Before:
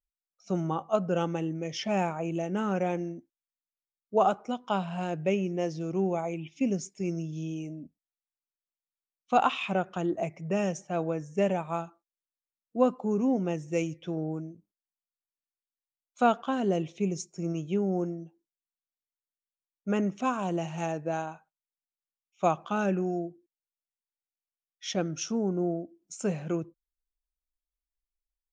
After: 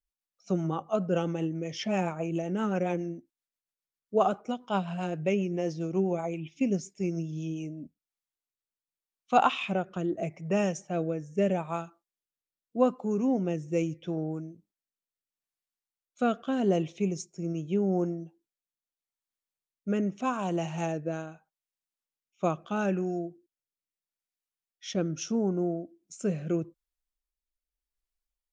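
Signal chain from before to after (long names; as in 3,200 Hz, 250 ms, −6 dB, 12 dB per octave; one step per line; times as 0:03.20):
rotating-speaker cabinet horn 7.5 Hz, later 0.8 Hz, at 0:07.30
level +2 dB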